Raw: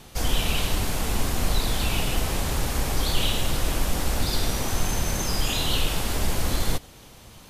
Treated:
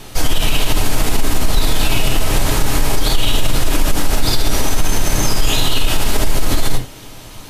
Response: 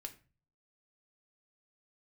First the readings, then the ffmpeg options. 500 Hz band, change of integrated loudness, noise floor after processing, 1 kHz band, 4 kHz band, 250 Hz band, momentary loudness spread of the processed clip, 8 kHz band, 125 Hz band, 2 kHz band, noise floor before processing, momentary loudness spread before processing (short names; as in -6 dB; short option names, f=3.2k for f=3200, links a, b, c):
+8.0 dB, +7.5 dB, -35 dBFS, +7.5 dB, +7.5 dB, +8.0 dB, 3 LU, +8.0 dB, +7.0 dB, +8.0 dB, -48 dBFS, 2 LU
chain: -filter_complex "[1:a]atrim=start_sample=2205,atrim=end_sample=3969[a];[0:a][a]afir=irnorm=-1:irlink=0,alimiter=level_in=18.5dB:limit=-1dB:release=50:level=0:latency=1,volume=-3dB"